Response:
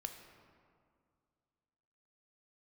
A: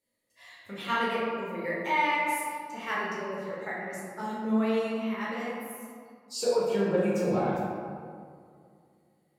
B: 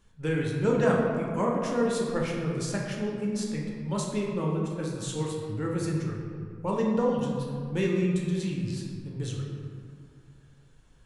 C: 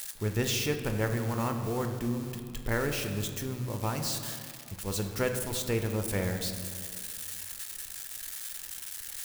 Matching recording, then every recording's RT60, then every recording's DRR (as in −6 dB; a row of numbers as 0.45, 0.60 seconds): C; 2.2, 2.2, 2.2 seconds; −7.0, −2.0, 5.0 decibels